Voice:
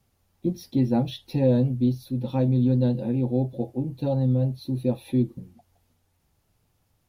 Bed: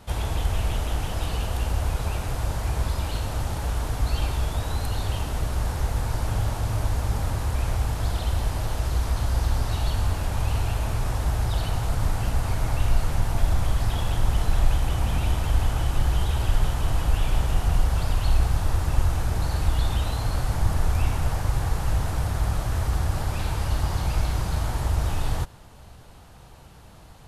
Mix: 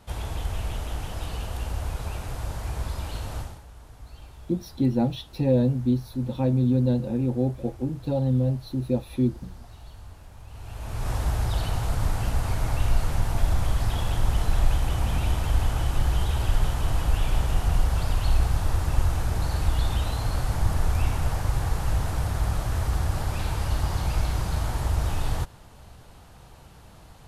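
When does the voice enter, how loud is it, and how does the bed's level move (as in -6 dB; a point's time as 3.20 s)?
4.05 s, -0.5 dB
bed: 3.39 s -5 dB
3.65 s -20 dB
10.47 s -20 dB
11.11 s -1 dB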